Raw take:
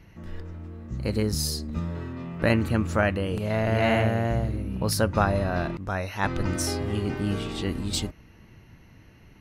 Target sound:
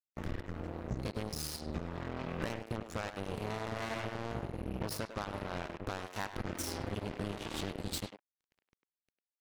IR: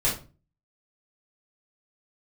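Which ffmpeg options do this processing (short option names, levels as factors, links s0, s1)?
-filter_complex "[0:a]acompressor=threshold=0.0141:ratio=16,acrusher=bits=5:mix=0:aa=0.5,asplit=2[s0][s1];[s1]adelay=100,highpass=300,lowpass=3400,asoftclip=type=hard:threshold=0.0119,volume=0.501[s2];[s0][s2]amix=inputs=2:normalize=0,volume=1.41"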